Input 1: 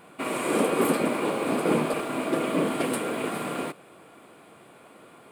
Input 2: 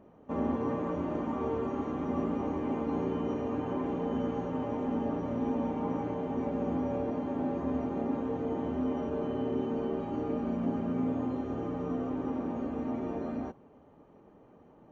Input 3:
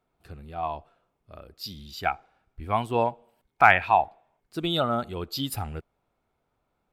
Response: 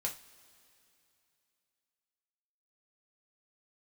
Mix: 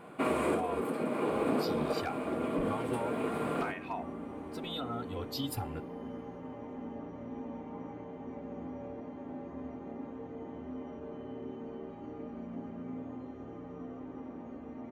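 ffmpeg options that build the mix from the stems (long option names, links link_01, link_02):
-filter_complex "[0:a]highshelf=frequency=2100:gain=-11.5,alimiter=limit=-20.5dB:level=0:latency=1:release=215,volume=0.5dB,asplit=2[link_01][link_02];[link_02]volume=-11.5dB[link_03];[1:a]equalizer=frequency=2000:width_type=o:width=0.2:gain=7,adelay=1900,volume=-10.5dB[link_04];[2:a]acompressor=threshold=-28dB:ratio=16,volume=20.5dB,asoftclip=hard,volume=-20.5dB,asplit=2[link_05][link_06];[link_06]adelay=2.8,afreqshift=0.29[link_07];[link_05][link_07]amix=inputs=2:normalize=1,volume=-3.5dB,asplit=3[link_08][link_09][link_10];[link_09]volume=-15dB[link_11];[link_10]apad=whole_len=234479[link_12];[link_01][link_12]sidechaincompress=threshold=-44dB:ratio=8:attack=7.9:release=1150[link_13];[3:a]atrim=start_sample=2205[link_14];[link_03][link_11]amix=inputs=2:normalize=0[link_15];[link_15][link_14]afir=irnorm=-1:irlink=0[link_16];[link_13][link_04][link_08][link_16]amix=inputs=4:normalize=0"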